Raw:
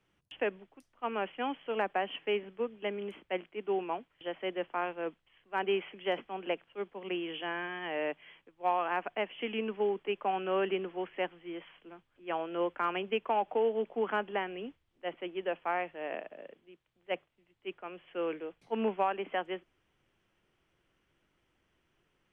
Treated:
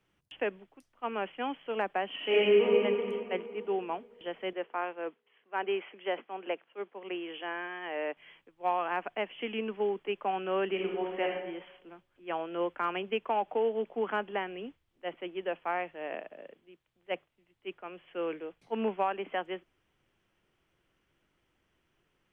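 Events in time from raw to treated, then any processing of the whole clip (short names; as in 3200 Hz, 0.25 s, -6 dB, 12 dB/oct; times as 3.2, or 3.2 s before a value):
2.14–2.64 reverb throw, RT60 2.8 s, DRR -9 dB
4.53–8.17 BPF 300–3000 Hz
10.71–11.32 reverb throw, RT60 0.92 s, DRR -1 dB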